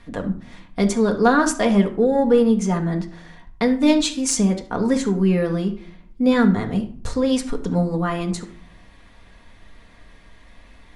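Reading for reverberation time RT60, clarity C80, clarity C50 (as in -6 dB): 0.55 s, 16.0 dB, 11.5 dB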